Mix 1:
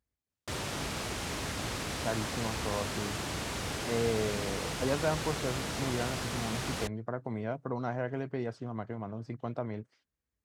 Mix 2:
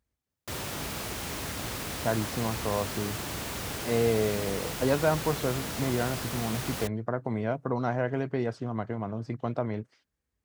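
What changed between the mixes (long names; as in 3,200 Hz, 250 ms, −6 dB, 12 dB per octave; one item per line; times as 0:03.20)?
speech +5.5 dB
background: remove low-pass filter 8,800 Hz 12 dB per octave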